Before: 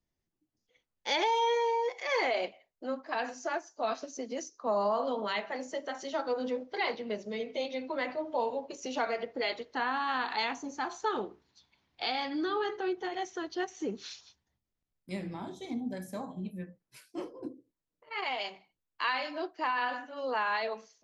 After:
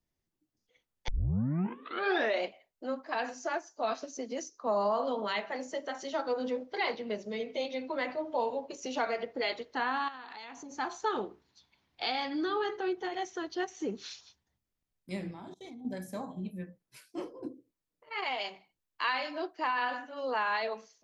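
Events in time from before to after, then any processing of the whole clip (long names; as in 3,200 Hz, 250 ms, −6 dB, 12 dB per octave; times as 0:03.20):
0:01.08: tape start 1.37 s
0:10.08–0:10.71: downward compressor 12 to 1, threshold −42 dBFS
0:15.31–0:15.85: output level in coarse steps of 23 dB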